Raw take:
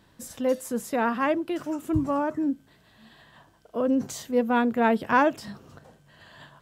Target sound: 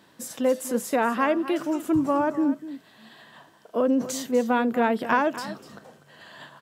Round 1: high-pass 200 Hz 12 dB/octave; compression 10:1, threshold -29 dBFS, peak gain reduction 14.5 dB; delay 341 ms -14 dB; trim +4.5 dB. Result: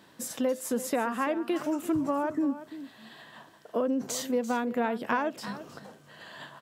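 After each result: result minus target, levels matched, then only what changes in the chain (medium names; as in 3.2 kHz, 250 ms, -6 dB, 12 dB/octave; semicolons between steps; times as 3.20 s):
echo 95 ms late; compression: peak gain reduction +6.5 dB
change: delay 246 ms -14 dB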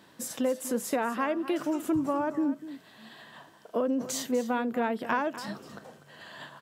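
compression: peak gain reduction +6.5 dB
change: compression 10:1, threshold -21.5 dBFS, peak gain reduction 8 dB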